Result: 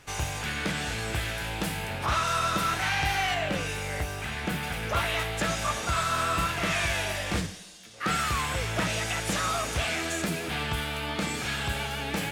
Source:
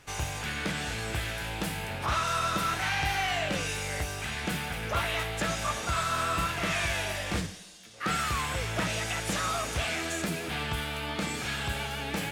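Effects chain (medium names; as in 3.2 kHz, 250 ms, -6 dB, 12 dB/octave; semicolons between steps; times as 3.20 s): 3.34–4.63 s: peaking EQ 6.6 kHz -5.5 dB 2.1 oct; trim +2 dB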